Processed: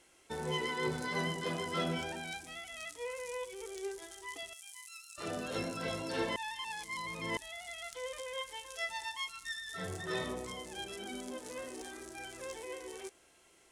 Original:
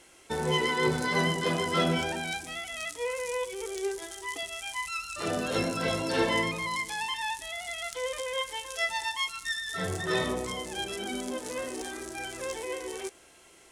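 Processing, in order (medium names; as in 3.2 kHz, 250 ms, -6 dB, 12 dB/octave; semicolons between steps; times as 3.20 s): 4.53–5.18 s: pre-emphasis filter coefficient 0.97; 6.36–7.37 s: reverse; trim -8.5 dB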